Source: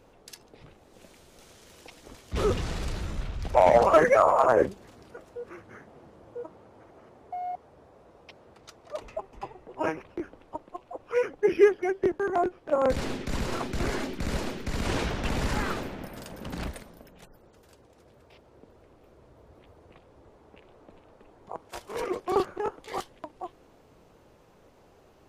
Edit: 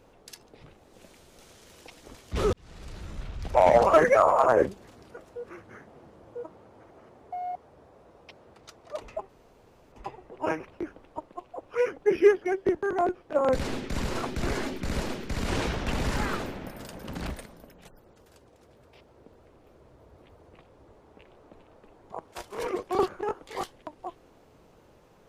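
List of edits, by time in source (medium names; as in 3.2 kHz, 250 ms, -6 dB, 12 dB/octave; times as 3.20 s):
2.53–3.66 s: fade in
9.29 s: insert room tone 0.63 s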